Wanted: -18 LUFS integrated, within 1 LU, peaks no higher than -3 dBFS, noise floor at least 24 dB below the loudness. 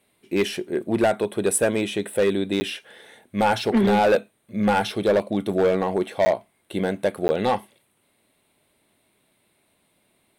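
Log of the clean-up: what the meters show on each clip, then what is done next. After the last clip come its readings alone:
clipped samples 1.3%; clipping level -13.5 dBFS; dropouts 3; longest dropout 10 ms; loudness -23.0 LUFS; peak level -13.5 dBFS; loudness target -18.0 LUFS
-> clip repair -13.5 dBFS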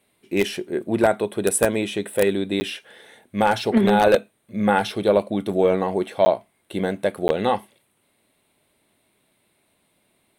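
clipped samples 0.0%; dropouts 3; longest dropout 10 ms
-> interpolate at 2.60/6.25/7.28 s, 10 ms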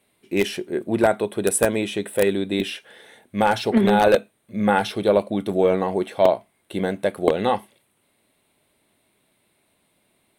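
dropouts 0; loudness -21.5 LUFS; peak level -1.5 dBFS; loudness target -18.0 LUFS
-> trim +3.5 dB; peak limiter -3 dBFS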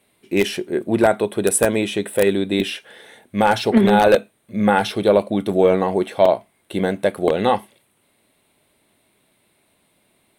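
loudness -18.5 LUFS; peak level -3.0 dBFS; noise floor -64 dBFS

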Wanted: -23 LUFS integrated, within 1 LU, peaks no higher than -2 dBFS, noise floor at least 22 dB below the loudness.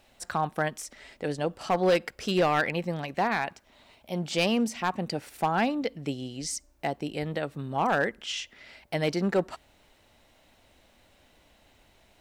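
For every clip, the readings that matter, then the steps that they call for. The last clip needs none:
clipped samples 0.5%; clipping level -17.5 dBFS; loudness -29.0 LUFS; peak level -17.5 dBFS; loudness target -23.0 LUFS
-> clip repair -17.5 dBFS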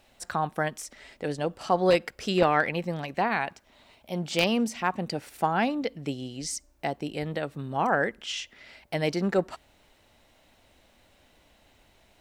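clipped samples 0.0%; loudness -28.5 LUFS; peak level -8.5 dBFS; loudness target -23.0 LUFS
-> trim +5.5 dB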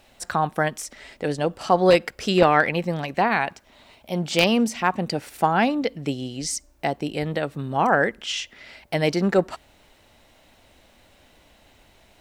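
loudness -23.0 LUFS; peak level -3.0 dBFS; noise floor -57 dBFS

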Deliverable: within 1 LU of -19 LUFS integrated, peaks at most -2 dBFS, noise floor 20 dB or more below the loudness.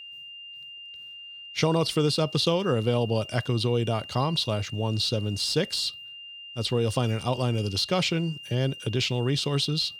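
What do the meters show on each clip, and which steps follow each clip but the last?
steady tone 2.8 kHz; tone level -40 dBFS; loudness -26.0 LUFS; peak level -11.0 dBFS; loudness target -19.0 LUFS
-> band-stop 2.8 kHz, Q 30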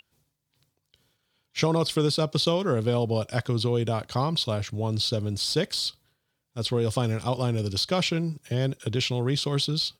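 steady tone not found; loudness -26.5 LUFS; peak level -11.0 dBFS; loudness target -19.0 LUFS
-> trim +7.5 dB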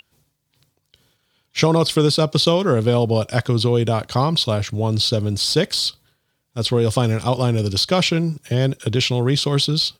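loudness -19.0 LUFS; peak level -3.5 dBFS; noise floor -71 dBFS

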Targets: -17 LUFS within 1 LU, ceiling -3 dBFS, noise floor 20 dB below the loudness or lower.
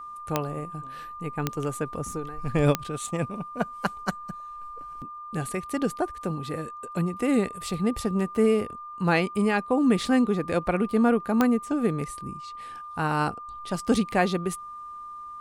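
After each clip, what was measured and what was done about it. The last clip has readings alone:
clicks found 4; steady tone 1.2 kHz; tone level -37 dBFS; loudness -27.0 LUFS; peak level -8.0 dBFS; loudness target -17.0 LUFS
-> de-click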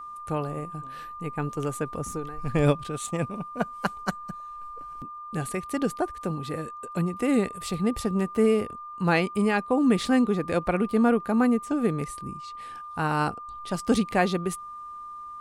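clicks found 0; steady tone 1.2 kHz; tone level -37 dBFS
-> band-stop 1.2 kHz, Q 30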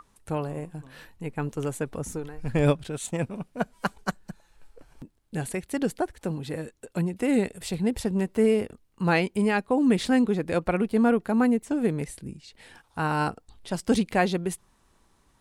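steady tone not found; loudness -27.0 LUFS; peak level -9.0 dBFS; loudness target -17.0 LUFS
-> trim +10 dB; peak limiter -3 dBFS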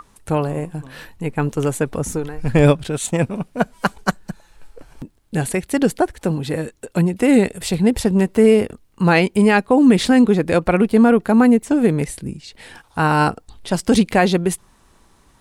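loudness -17.5 LUFS; peak level -3.0 dBFS; noise floor -55 dBFS

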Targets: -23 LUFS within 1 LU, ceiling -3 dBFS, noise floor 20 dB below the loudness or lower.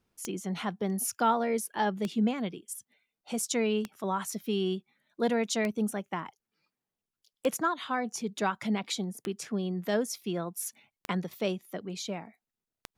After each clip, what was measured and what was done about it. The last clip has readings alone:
clicks found 8; loudness -32.0 LUFS; peak level -14.0 dBFS; loudness target -23.0 LUFS
-> de-click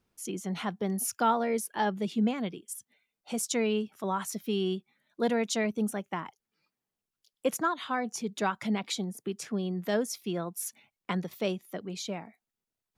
clicks found 0; loudness -32.0 LUFS; peak level -14.0 dBFS; loudness target -23.0 LUFS
-> trim +9 dB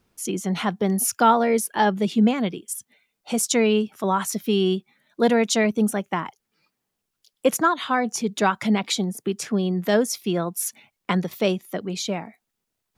loudness -23.0 LUFS; peak level -5.0 dBFS; noise floor -80 dBFS

